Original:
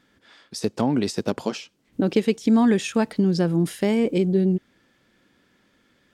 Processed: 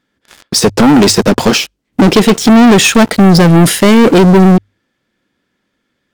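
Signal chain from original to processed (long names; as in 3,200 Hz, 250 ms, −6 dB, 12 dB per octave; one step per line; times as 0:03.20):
leveller curve on the samples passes 5
mains-hum notches 50/100 Hz
level +6 dB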